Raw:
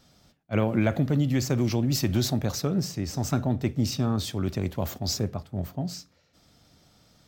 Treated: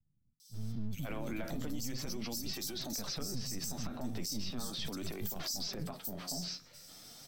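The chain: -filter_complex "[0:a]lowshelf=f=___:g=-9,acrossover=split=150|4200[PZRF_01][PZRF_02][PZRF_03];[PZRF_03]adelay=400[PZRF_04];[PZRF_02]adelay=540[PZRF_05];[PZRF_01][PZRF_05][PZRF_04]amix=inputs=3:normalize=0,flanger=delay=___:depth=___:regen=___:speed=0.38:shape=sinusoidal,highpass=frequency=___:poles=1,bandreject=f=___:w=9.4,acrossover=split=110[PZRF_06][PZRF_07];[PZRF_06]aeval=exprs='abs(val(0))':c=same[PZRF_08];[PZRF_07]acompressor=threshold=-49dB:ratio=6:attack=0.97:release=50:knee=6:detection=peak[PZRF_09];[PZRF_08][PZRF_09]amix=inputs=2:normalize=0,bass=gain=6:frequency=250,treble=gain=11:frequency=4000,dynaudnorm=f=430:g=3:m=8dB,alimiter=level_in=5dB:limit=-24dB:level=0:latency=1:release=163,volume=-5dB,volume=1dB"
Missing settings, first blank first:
420, 2.5, 9.9, 33, 41, 6800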